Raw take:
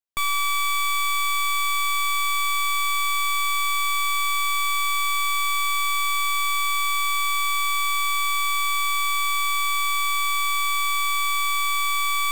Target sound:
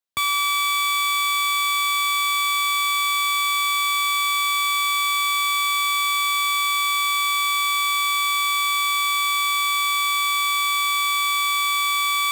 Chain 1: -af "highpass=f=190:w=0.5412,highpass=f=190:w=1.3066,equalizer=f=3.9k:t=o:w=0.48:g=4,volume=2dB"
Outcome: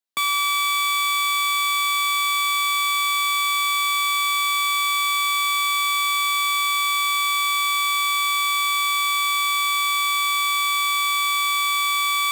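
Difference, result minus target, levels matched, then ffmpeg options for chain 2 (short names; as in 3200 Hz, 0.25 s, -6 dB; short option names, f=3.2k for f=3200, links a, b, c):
125 Hz band -13.5 dB
-af "highpass=f=71:w=0.5412,highpass=f=71:w=1.3066,equalizer=f=3.9k:t=o:w=0.48:g=4,volume=2dB"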